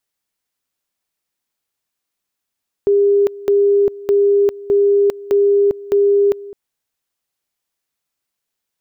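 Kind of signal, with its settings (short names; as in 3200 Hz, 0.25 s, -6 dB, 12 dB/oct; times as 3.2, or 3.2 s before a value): two-level tone 403 Hz -9.5 dBFS, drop 19.5 dB, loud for 0.40 s, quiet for 0.21 s, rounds 6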